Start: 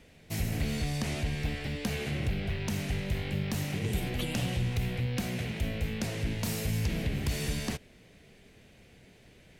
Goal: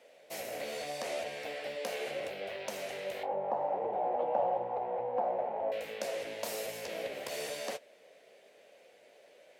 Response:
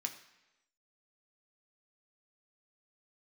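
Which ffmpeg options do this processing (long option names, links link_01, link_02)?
-filter_complex "[0:a]asettb=1/sr,asplit=3[link_01][link_02][link_03];[link_01]atrim=end=3.234[link_04];[link_02]atrim=start=3.23:end=5.72,asetpts=PTS-STARTPTS,afade=type=in:duration=0.004:curve=qsin,afade=type=out:start_time=2.486:duration=0.004:curve=qsin,lowpass=frequency=860:width_type=q:width=8.6[link_05];[link_03]atrim=start=5.716[link_06];[link_04][link_05]acrossfade=duration=0.004:curve1=hsin:curve2=qsin[link_07];[link_07][link_06]acrossfade=duration=0.004:curve1=qsin:curve2=hsin,flanger=delay=8:depth=9.7:regen=-44:speed=0.77:shape=triangular,highpass=frequency=560:width_type=q:width=4.9"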